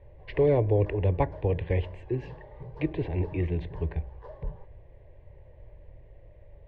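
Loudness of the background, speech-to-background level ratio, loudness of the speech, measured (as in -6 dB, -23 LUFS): -48.0 LUFS, 19.5 dB, -28.5 LUFS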